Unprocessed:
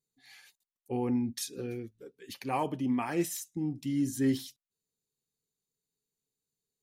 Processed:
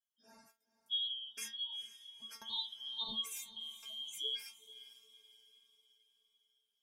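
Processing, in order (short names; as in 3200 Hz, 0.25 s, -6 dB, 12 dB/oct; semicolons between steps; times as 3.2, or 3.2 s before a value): four-band scrambler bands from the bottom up 2413; spectral gate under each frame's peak -25 dB strong; metallic resonator 220 Hz, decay 0.25 s, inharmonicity 0.002; on a send: diffused feedback echo 0.465 s, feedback 46%, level -15.5 dB; on the sum: gain +5.5 dB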